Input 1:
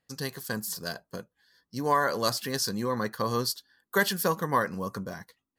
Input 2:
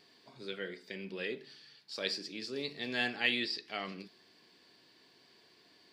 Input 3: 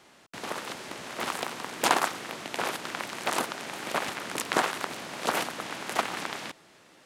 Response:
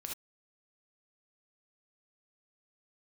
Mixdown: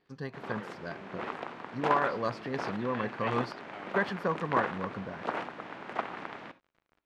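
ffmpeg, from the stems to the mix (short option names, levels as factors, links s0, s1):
-filter_complex "[0:a]volume=0.668[s0];[1:a]volume=0.473[s1];[2:a]acrusher=bits=7:mix=0:aa=0.000001,volume=0.473,asplit=2[s2][s3];[s3]volume=0.376[s4];[3:a]atrim=start_sample=2205[s5];[s4][s5]afir=irnorm=-1:irlink=0[s6];[s0][s1][s2][s6]amix=inputs=4:normalize=0,lowpass=1900"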